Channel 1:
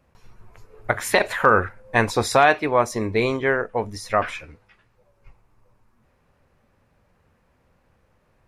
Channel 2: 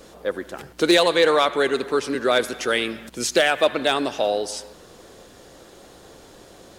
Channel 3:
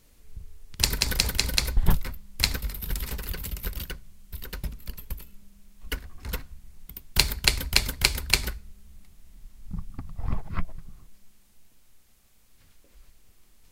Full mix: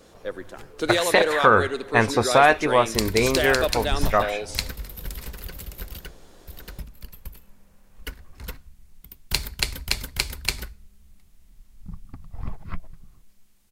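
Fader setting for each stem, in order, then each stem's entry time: 0.0 dB, -6.5 dB, -3.5 dB; 0.00 s, 0.00 s, 2.15 s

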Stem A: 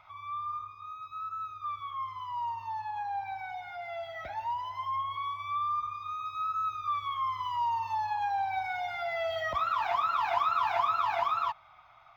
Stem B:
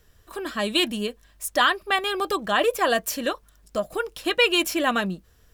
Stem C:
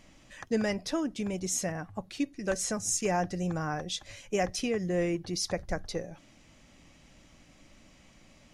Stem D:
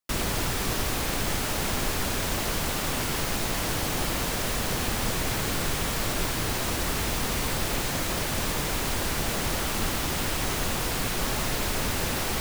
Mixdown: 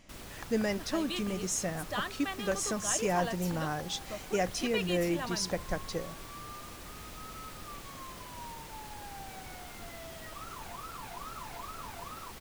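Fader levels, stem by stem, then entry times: -17.0 dB, -16.0 dB, -1.5 dB, -19.0 dB; 0.80 s, 0.35 s, 0.00 s, 0.00 s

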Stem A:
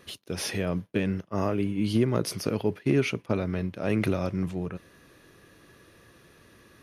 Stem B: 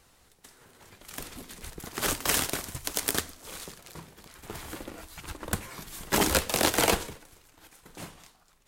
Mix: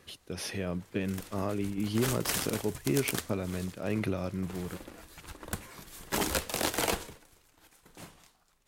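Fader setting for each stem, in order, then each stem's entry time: -5.5 dB, -6.0 dB; 0.00 s, 0.00 s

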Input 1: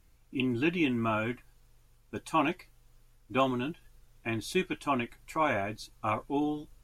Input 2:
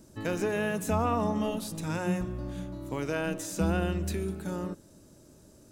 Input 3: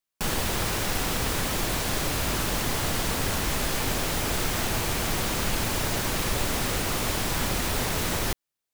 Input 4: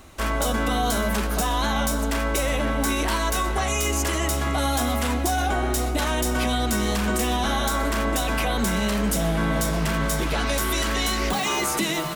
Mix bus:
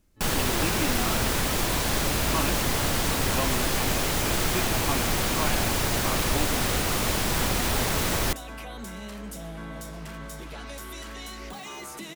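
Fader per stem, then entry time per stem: -4.0 dB, -17.5 dB, +1.5 dB, -15.0 dB; 0.00 s, 0.00 s, 0.00 s, 0.20 s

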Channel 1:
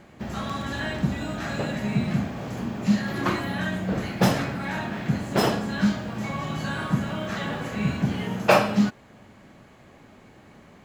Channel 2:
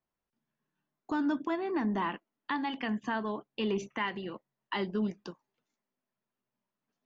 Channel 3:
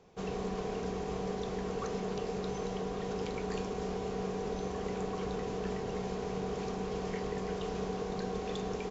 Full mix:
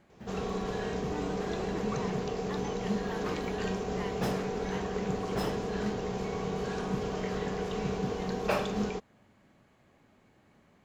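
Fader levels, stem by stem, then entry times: -13.0 dB, -11.0 dB, +2.0 dB; 0.00 s, 0.00 s, 0.10 s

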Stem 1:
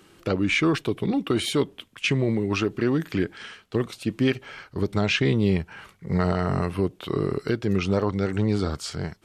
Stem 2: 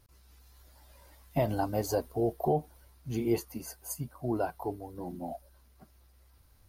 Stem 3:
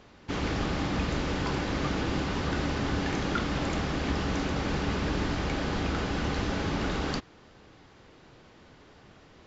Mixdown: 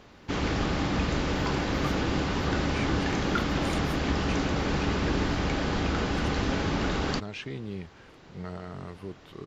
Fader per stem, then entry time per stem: -15.5 dB, -16.0 dB, +2.0 dB; 2.25 s, 0.00 s, 0.00 s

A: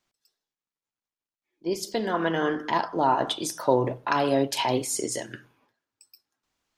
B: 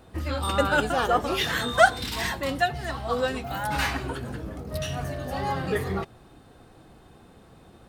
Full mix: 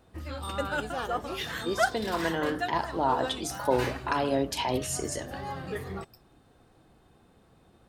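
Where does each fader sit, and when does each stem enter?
-4.0 dB, -8.5 dB; 0.00 s, 0.00 s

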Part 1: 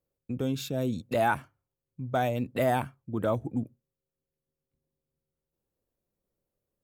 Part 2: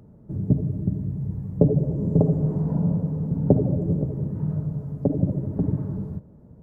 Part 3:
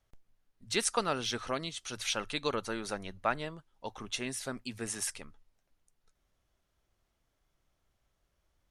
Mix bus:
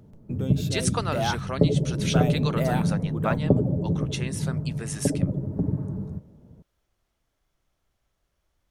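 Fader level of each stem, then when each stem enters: -2.5 dB, -2.0 dB, +2.0 dB; 0.00 s, 0.00 s, 0.00 s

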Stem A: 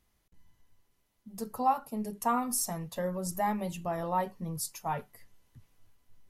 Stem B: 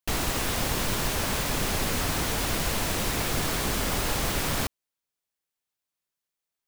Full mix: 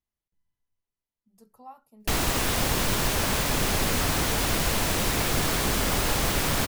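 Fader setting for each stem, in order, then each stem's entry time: -18.5 dB, +2.5 dB; 0.00 s, 2.00 s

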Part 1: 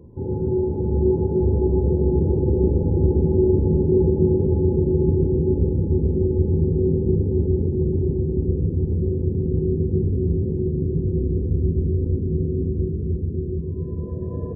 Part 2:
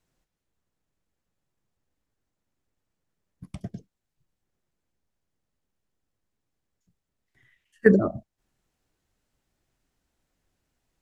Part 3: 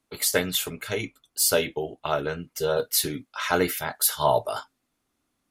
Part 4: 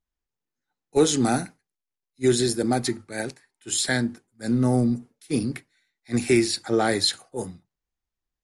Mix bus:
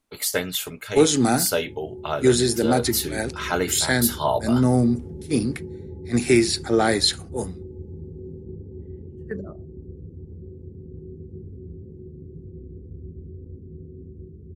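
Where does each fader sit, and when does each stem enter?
-18.0 dB, -15.5 dB, -1.0 dB, +2.5 dB; 1.40 s, 1.45 s, 0.00 s, 0.00 s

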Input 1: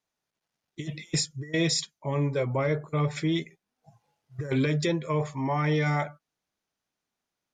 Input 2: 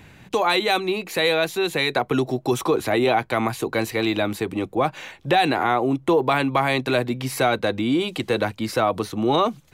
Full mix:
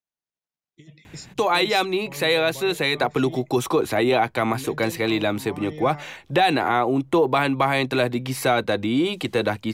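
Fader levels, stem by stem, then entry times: -12.5 dB, 0.0 dB; 0.00 s, 1.05 s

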